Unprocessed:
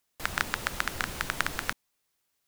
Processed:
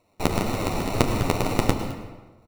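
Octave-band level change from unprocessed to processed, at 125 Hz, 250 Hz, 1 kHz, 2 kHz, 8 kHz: +17.5, +19.0, +7.0, −3.5, +3.0 decibels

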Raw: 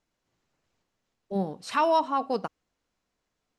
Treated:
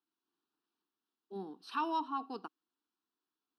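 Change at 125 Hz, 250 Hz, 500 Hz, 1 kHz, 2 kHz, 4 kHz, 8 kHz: below −15 dB, −10.0 dB, −18.0 dB, −10.5 dB, −11.0 dB, −10.0 dB, below −15 dB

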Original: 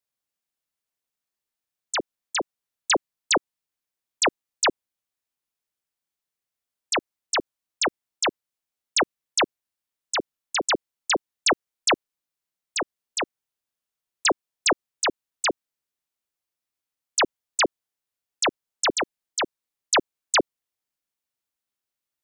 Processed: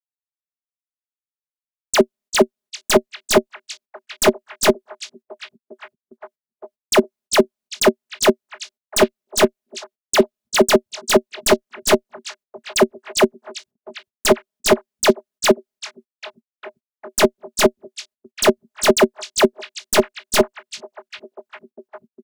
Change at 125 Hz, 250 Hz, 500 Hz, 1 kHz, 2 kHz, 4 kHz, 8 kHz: +15.0, +13.0, +13.5, +4.5, +3.5, +3.5, +4.5 decibels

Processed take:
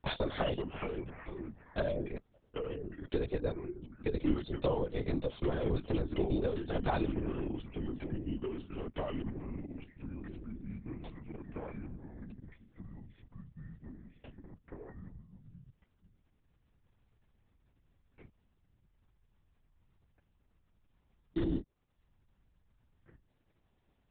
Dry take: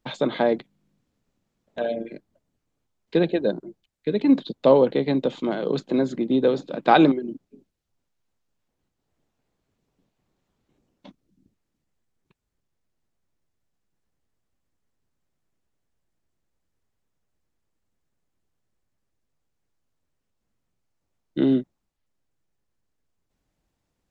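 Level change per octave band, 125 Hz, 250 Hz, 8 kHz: −3.0 dB, −13.0 dB, can't be measured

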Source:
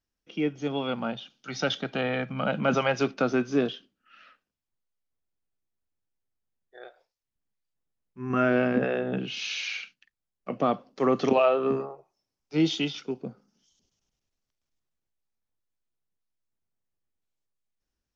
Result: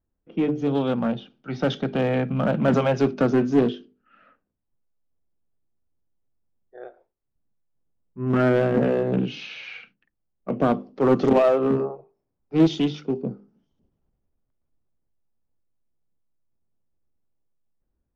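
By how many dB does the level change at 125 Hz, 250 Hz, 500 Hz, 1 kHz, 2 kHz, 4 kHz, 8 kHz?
+8.5 dB, +6.5 dB, +5.0 dB, +1.5 dB, −1.5 dB, −3.5 dB, can't be measured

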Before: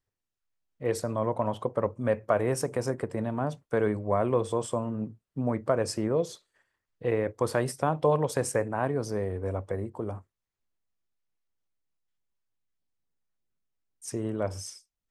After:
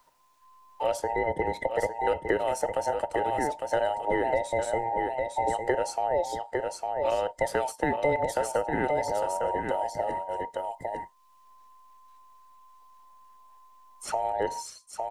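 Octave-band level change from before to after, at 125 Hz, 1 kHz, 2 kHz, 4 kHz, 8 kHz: −10.5, +7.0, +5.5, +2.0, −0.5 decibels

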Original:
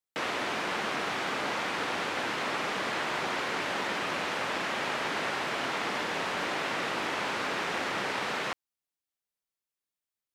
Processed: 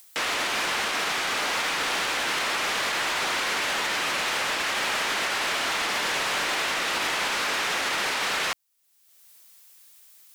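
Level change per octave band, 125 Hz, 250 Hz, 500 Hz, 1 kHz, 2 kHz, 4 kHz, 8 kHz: −2.0, −1.5, +1.0, +3.5, +6.0, +9.0, +12.5 decibels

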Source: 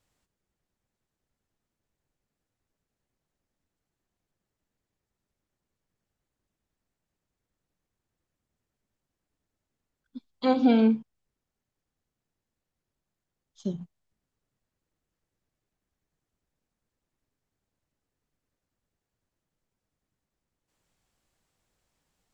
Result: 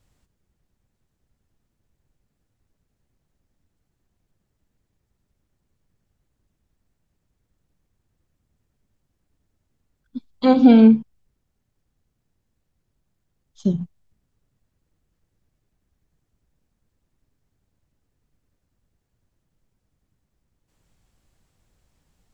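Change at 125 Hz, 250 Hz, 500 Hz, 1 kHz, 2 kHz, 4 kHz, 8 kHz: +11.0 dB, +10.0 dB, +7.0 dB, +6.0 dB, +5.0 dB, +5.0 dB, can't be measured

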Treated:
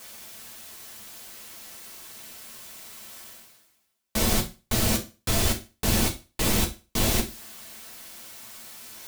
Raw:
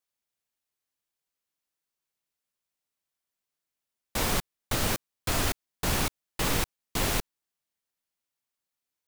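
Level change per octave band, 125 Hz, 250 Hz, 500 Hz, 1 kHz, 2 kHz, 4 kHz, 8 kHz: +5.0, +6.5, +3.5, 0.0, +1.0, +4.0, +5.5 decibels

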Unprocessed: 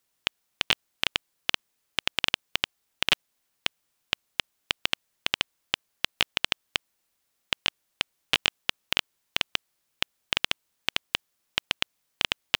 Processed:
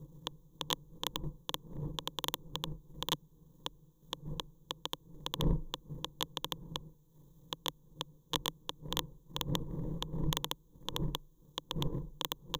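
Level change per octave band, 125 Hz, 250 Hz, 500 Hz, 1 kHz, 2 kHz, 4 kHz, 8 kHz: +9.0, +4.0, −2.5, −4.5, −21.0, −11.5, −4.5 decibels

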